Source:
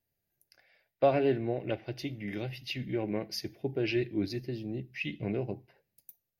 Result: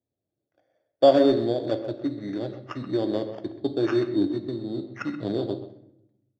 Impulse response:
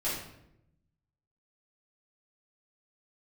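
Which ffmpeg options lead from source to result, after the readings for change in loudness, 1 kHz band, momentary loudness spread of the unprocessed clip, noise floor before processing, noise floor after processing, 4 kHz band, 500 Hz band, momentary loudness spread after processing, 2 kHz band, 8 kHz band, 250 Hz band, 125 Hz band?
+7.5 dB, +6.5 dB, 10 LU, -84 dBFS, under -85 dBFS, +3.5 dB, +8.5 dB, 14 LU, -1.0 dB, n/a, +8.5 dB, +1.0 dB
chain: -filter_complex "[0:a]adynamicsmooth=sensitivity=5.5:basefreq=740,acrusher=samples=11:mix=1:aa=0.000001,highpass=120,equalizer=f=170:t=q:w=4:g=-7,equalizer=f=290:t=q:w=4:g=7,equalizer=f=590:t=q:w=4:g=6,equalizer=f=2.4k:t=q:w=4:g=-9,lowpass=f=4.5k:w=0.5412,lowpass=f=4.5k:w=1.3066,asplit=2[a][b];[b]adelay=130,highpass=300,lowpass=3.4k,asoftclip=type=hard:threshold=-20dB,volume=-12dB[c];[a][c]amix=inputs=2:normalize=0,asplit=2[d][e];[1:a]atrim=start_sample=2205[f];[e][f]afir=irnorm=-1:irlink=0,volume=-14dB[g];[d][g]amix=inputs=2:normalize=0,volume=3dB"

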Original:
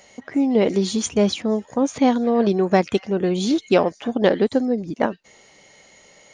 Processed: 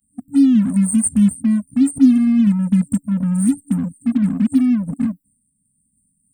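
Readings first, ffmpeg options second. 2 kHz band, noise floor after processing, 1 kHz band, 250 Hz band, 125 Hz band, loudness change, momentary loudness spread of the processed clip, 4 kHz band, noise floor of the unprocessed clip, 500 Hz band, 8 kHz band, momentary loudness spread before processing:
under -10 dB, -67 dBFS, under -15 dB, +7.0 dB, +7.5 dB, +4.0 dB, 8 LU, under -10 dB, -52 dBFS, under -25 dB, +7.0 dB, 6 LU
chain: -filter_complex "[0:a]crystalizer=i=4.5:c=0,agate=range=-33dB:threshold=-33dB:ratio=3:detection=peak,afftfilt=real='re*(1-between(b*sr/4096,280,7500))':imag='im*(1-between(b*sr/4096,280,7500))':win_size=4096:overlap=0.75,asplit=2[a][b];[b]acrusher=bits=4:mix=0:aa=0.5,volume=-9dB[c];[a][c]amix=inputs=2:normalize=0,volume=5dB"

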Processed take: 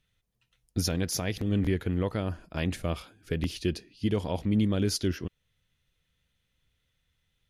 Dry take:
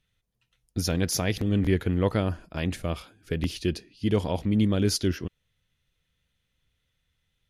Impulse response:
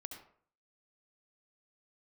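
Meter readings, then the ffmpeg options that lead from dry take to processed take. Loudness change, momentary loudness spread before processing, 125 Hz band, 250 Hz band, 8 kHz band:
-3.0 dB, 10 LU, -3.0 dB, -2.5 dB, -2.5 dB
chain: -af "alimiter=limit=-16.5dB:level=0:latency=1:release=464"

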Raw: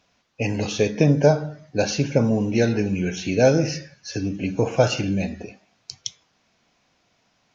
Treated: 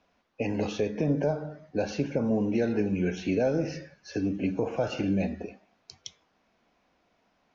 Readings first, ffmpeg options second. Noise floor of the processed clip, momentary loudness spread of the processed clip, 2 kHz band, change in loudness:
-71 dBFS, 14 LU, -9.5 dB, -7.5 dB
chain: -filter_complex "[0:a]lowpass=f=1.3k:p=1,equalizer=f=120:t=o:w=0.79:g=-12,acrossover=split=120[a][b];[b]alimiter=limit=-17.5dB:level=0:latency=1:release=245[c];[a][c]amix=inputs=2:normalize=0"

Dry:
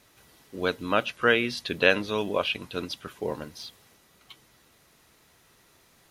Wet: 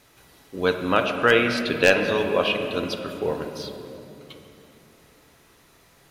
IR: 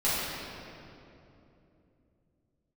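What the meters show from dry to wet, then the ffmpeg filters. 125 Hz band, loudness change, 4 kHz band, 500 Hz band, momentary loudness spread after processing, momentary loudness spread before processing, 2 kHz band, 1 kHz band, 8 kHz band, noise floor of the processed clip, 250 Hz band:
+5.5 dB, +4.5 dB, +3.0 dB, +5.5 dB, 17 LU, 16 LU, +4.0 dB, +5.0 dB, +6.0 dB, -57 dBFS, +5.5 dB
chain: -filter_complex "[0:a]aeval=exprs='0.376*(abs(mod(val(0)/0.376+3,4)-2)-1)':c=same,asplit=2[a][b];[1:a]atrim=start_sample=2205,lowpass=3.2k[c];[b][c]afir=irnorm=-1:irlink=0,volume=-15dB[d];[a][d]amix=inputs=2:normalize=0,volume=2.5dB"

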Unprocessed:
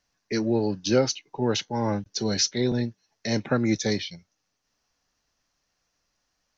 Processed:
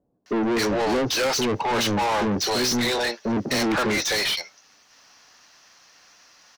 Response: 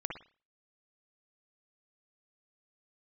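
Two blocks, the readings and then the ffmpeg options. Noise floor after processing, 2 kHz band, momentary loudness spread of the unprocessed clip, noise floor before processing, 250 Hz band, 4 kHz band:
-58 dBFS, +10.5 dB, 7 LU, -78 dBFS, +1.5 dB, +6.0 dB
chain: -filter_complex "[0:a]acrossover=split=470[a][b];[b]adelay=260[c];[a][c]amix=inputs=2:normalize=0,asplit=2[d][e];[e]highpass=f=720:p=1,volume=37dB,asoftclip=type=tanh:threshold=-9.5dB[f];[d][f]amix=inputs=2:normalize=0,lowpass=f=5.5k:p=1,volume=-6dB,volume=-6dB"

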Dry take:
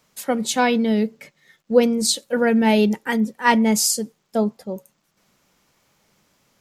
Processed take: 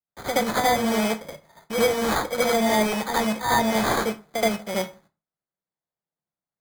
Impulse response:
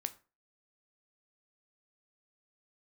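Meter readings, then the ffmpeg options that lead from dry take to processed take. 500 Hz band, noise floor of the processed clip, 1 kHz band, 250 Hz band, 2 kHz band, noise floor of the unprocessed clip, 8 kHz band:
-2.5 dB, under -85 dBFS, +0.5 dB, -7.0 dB, -1.0 dB, -69 dBFS, -7.0 dB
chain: -filter_complex "[0:a]asoftclip=type=tanh:threshold=-13dB,equalizer=f=4.1k:t=o:w=0.46:g=-11.5,acrusher=bits=2:mode=log:mix=0:aa=0.000001,agate=range=-39dB:threshold=-56dB:ratio=16:detection=peak,highpass=120,equalizer=f=160:t=q:w=4:g=5,equalizer=f=250:t=q:w=4:g=-9,equalizer=f=410:t=q:w=4:g=-3,equalizer=f=710:t=q:w=4:g=6,equalizer=f=1.7k:t=q:w=4:g=-7,equalizer=f=4.2k:t=q:w=4:g=5,lowpass=f=8k:w=0.5412,lowpass=f=8k:w=1.3066,acrusher=samples=16:mix=1:aa=0.000001,acrossover=split=460|1000[a][b][c];[a]acompressor=threshold=-35dB:ratio=4[d];[b]acompressor=threshold=-31dB:ratio=4[e];[c]acompressor=threshold=-32dB:ratio=4[f];[d][e][f]amix=inputs=3:normalize=0,asplit=2[g][h];[1:a]atrim=start_sample=2205,adelay=75[i];[h][i]afir=irnorm=-1:irlink=0,volume=7dB[j];[g][j]amix=inputs=2:normalize=0"

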